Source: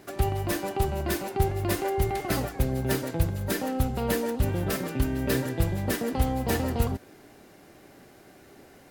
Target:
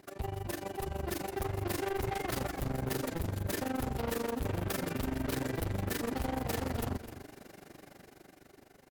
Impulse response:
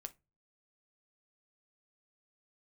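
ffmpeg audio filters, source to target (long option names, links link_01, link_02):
-af "dynaudnorm=framelen=280:gausssize=9:maxgain=11.5dB,asoftclip=type=hard:threshold=-21dB,tremolo=f=24:d=0.919,asoftclip=type=tanh:threshold=-25.5dB,aecho=1:1:256:0.211,volume=-4dB"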